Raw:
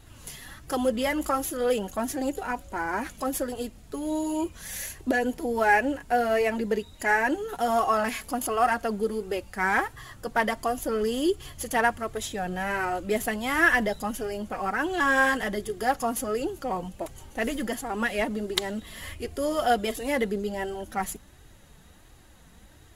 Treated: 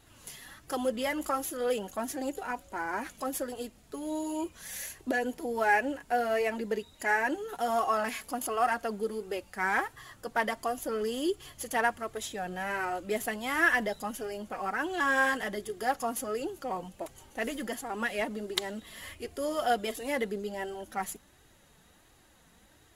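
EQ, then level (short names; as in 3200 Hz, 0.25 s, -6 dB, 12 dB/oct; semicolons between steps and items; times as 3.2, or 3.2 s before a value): low shelf 140 Hz -10.5 dB; -4.0 dB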